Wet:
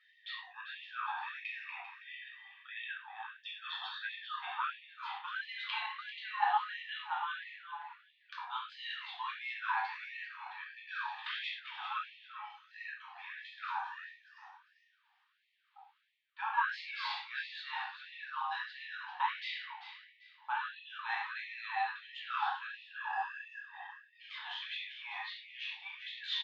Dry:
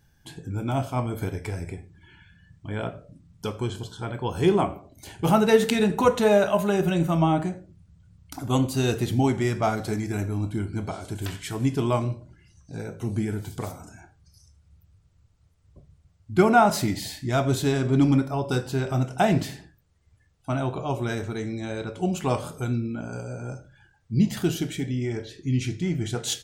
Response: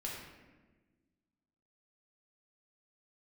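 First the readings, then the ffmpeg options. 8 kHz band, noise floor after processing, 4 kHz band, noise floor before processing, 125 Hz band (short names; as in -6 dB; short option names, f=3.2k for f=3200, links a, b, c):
under -35 dB, -73 dBFS, -5.0 dB, -63 dBFS, under -40 dB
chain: -filter_complex "[0:a]areverse,acompressor=threshold=-33dB:ratio=8,areverse,highpass=f=210:t=q:w=0.5412,highpass=f=210:t=q:w=1.307,lowpass=f=3.4k:t=q:w=0.5176,lowpass=f=3.4k:t=q:w=0.7071,lowpass=f=3.4k:t=q:w=1.932,afreqshift=230,aecho=1:1:393|786|1179:0.282|0.0789|0.0221[a];[1:a]atrim=start_sample=2205,afade=t=out:st=0.27:d=0.01,atrim=end_sample=12348,asetrate=79380,aresample=44100[b];[a][b]afir=irnorm=-1:irlink=0,afftfilt=real='re*gte(b*sr/1024,720*pow(1800/720,0.5+0.5*sin(2*PI*1.5*pts/sr)))':imag='im*gte(b*sr/1024,720*pow(1800/720,0.5+0.5*sin(2*PI*1.5*pts/sr)))':win_size=1024:overlap=0.75,volume=12dB"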